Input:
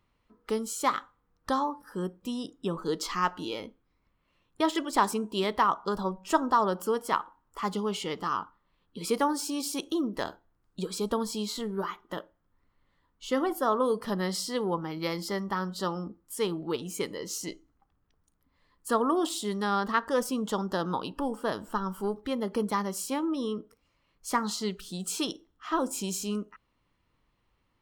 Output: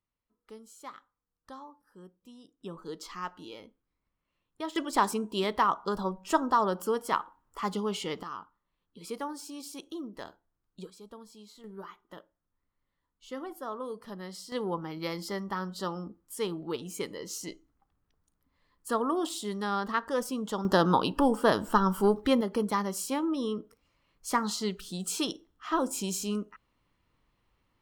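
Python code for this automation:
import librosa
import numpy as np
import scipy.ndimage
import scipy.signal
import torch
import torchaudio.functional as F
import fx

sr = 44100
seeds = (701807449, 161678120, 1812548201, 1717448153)

y = fx.gain(x, sr, db=fx.steps((0.0, -18.0), (2.61, -10.0), (4.76, -1.0), (8.23, -10.0), (10.9, -19.0), (11.64, -11.5), (14.52, -3.0), (20.65, 7.0), (22.41, 0.0)))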